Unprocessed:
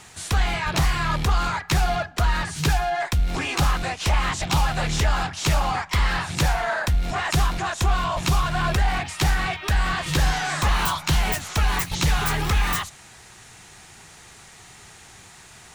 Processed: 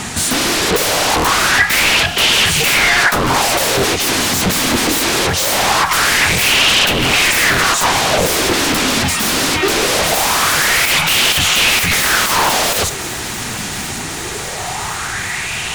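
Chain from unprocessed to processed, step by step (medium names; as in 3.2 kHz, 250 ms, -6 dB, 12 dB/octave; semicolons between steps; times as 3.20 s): sine folder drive 20 dB, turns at -11 dBFS; thinning echo 1085 ms, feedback 56%, level -13 dB; sweeping bell 0.22 Hz 230–3000 Hz +11 dB; trim -2.5 dB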